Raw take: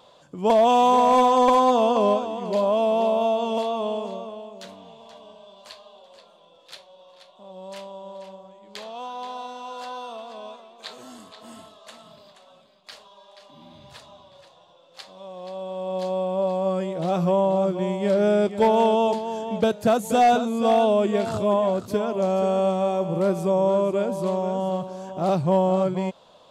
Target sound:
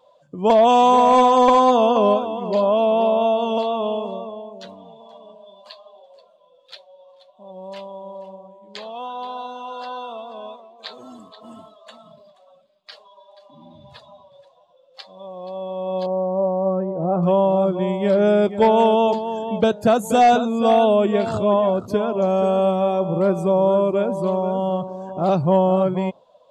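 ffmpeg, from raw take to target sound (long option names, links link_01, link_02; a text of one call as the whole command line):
ffmpeg -i in.wav -filter_complex "[0:a]asettb=1/sr,asplit=3[link_01][link_02][link_03];[link_01]atrim=end=16.064[link_04];[link_02]atrim=start=16.06:end=17.23,asetpts=PTS-STARTPTS,afade=type=in:duration=0.004:curve=qsin,afade=type=out:start_time=1.166:duration=0.004:curve=qsin,lowpass=1100[link_05];[link_03]atrim=start=17.226[link_06];[link_04][link_05]acrossfade=duration=0.004:curve1=hsin:curve2=qsin[link_07];[link_07][link_06]acrossfade=duration=0.004:curve1=qsin:curve2=hsin,afftdn=noise_reduction=16:noise_floor=-45,volume=3.5dB" out.wav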